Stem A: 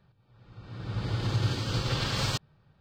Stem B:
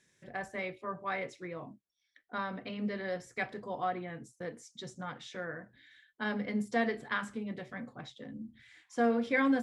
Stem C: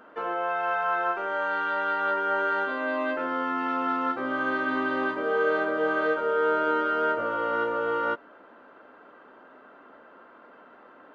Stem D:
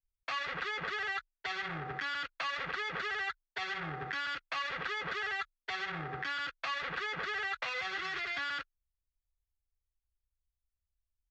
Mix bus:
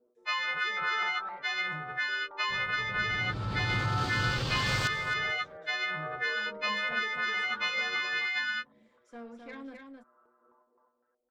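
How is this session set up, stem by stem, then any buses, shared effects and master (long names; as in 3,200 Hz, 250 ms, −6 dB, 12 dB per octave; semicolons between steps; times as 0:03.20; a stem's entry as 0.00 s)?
−6.0 dB, 2.50 s, no send, echo send −13.5 dB, envelope flattener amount 50%
−14.0 dB, 0.15 s, no send, echo send −5 dB, tube saturation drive 22 dB, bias 0.55
−10.5 dB, 0.00 s, no send, echo send −3 dB, gate pattern "x......xxx.x" 137 BPM −12 dB; stiff-string resonator 120 Hz, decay 0.31 s, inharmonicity 0.002; low-pass on a step sequencer 3.9 Hz 430–1,900 Hz
+1.5 dB, 0.00 s, no send, no echo send, every partial snapped to a pitch grid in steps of 3 semitones; every bin expanded away from the loudest bin 1.5 to 1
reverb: not used
echo: single-tap delay 262 ms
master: no processing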